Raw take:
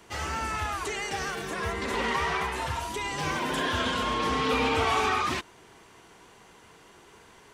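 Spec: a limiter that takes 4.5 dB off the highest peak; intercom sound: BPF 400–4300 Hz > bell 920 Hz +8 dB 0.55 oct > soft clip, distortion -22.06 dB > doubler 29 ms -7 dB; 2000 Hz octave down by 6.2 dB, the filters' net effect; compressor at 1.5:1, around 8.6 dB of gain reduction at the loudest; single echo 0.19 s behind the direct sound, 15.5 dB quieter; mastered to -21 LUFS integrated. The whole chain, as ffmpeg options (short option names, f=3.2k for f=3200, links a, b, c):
-filter_complex "[0:a]equalizer=f=2k:t=o:g=-8.5,acompressor=threshold=-48dB:ratio=1.5,alimiter=level_in=6dB:limit=-24dB:level=0:latency=1,volume=-6dB,highpass=400,lowpass=4.3k,equalizer=f=920:t=o:w=0.55:g=8,aecho=1:1:190:0.168,asoftclip=threshold=-28dB,asplit=2[a][b];[b]adelay=29,volume=-7dB[c];[a][c]amix=inputs=2:normalize=0,volume=16dB"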